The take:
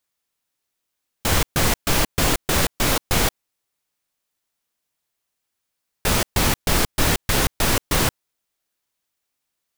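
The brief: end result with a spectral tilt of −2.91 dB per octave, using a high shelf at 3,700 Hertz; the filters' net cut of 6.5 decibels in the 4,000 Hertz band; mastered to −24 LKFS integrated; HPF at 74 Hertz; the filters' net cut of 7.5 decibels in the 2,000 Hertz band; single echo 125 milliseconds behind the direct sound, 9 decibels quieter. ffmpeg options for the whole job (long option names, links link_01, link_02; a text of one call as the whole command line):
ffmpeg -i in.wav -af "highpass=74,equalizer=frequency=2000:width_type=o:gain=-8.5,highshelf=frequency=3700:gain=3.5,equalizer=frequency=4000:width_type=o:gain=-8.5,aecho=1:1:125:0.355,volume=-3.5dB" out.wav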